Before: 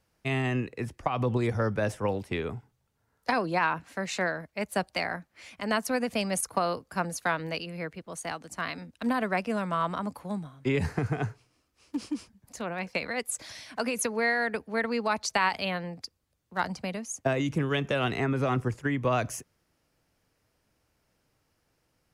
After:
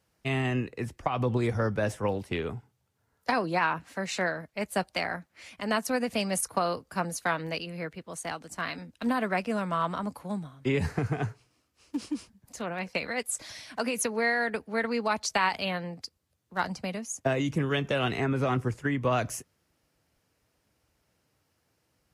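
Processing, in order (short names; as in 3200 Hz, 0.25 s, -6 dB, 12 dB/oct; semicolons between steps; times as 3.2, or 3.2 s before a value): Vorbis 48 kbps 44100 Hz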